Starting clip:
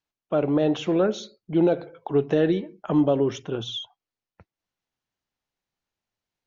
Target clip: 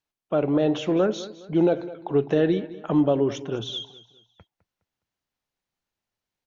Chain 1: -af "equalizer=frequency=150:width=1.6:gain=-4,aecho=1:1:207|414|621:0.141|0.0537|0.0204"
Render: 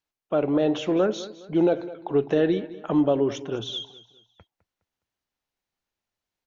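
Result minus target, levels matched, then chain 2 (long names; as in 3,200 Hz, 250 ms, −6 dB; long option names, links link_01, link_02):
125 Hz band −3.0 dB
-af "aecho=1:1:207|414|621:0.141|0.0537|0.0204"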